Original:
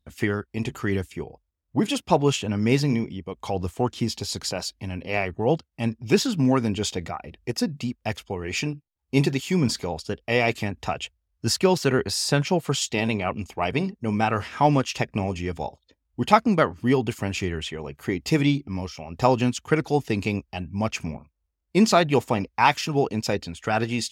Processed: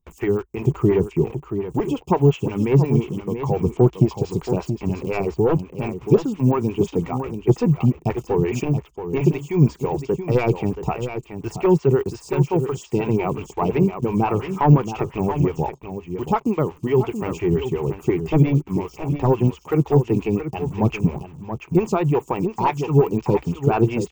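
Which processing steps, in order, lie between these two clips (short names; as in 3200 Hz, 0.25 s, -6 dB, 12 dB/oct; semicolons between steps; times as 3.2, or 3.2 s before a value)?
low shelf 210 Hz +10 dB; in parallel at -6 dB: bit-crush 6-bit; on the sum: AGC; ripple EQ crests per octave 0.72, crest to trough 10 dB; de-esser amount 85%; on a send: echo 0.677 s -9 dB; on the sum: photocell phaser 5.7 Hz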